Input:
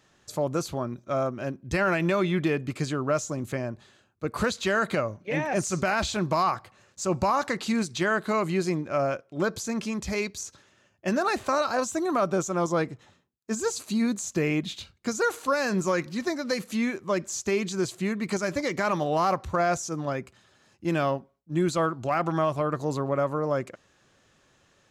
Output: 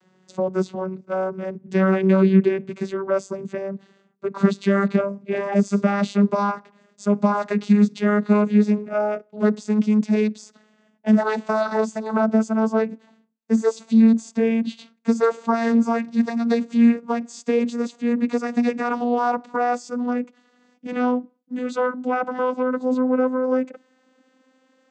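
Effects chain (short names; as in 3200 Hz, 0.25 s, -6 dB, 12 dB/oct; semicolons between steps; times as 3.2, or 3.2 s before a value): vocoder on a gliding note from F#3, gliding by +6 st; gain +7.5 dB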